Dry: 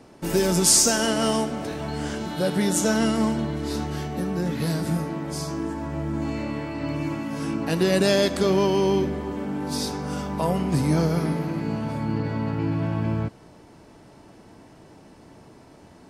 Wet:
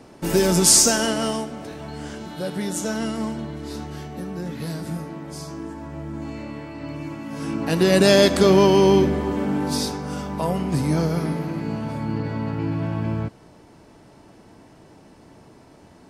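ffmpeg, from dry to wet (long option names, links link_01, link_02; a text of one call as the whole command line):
ffmpeg -i in.wav -af "volume=13.5dB,afade=type=out:start_time=0.8:duration=0.65:silence=0.421697,afade=type=in:start_time=7.18:duration=1.04:silence=0.298538,afade=type=out:start_time=9.55:duration=0.45:silence=0.501187" out.wav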